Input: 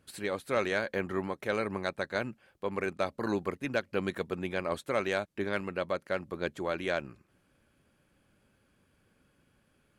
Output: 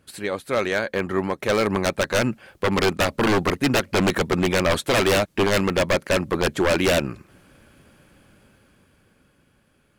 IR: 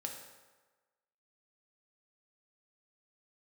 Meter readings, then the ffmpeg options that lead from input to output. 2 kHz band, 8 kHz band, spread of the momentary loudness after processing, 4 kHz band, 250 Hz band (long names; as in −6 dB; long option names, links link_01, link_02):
+11.0 dB, +20.0 dB, 5 LU, +16.5 dB, +12.5 dB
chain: -af "dynaudnorm=framelen=200:gausssize=17:maxgain=10.5dB,aeval=exprs='0.106*(abs(mod(val(0)/0.106+3,4)-2)-1)':channel_layout=same,volume=6.5dB"